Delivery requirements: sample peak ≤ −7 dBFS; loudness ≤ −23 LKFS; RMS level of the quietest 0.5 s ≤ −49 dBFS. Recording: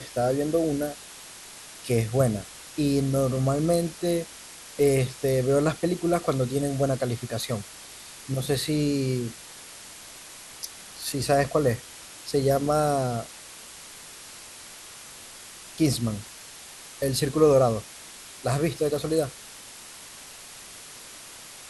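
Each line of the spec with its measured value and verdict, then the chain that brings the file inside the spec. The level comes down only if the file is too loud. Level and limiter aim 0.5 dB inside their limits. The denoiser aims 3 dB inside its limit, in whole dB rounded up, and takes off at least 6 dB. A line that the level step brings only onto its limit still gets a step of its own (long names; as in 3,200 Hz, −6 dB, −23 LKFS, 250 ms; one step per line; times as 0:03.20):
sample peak −7.5 dBFS: in spec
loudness −25.5 LKFS: in spec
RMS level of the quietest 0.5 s −44 dBFS: out of spec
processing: broadband denoise 8 dB, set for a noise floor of −44 dBFS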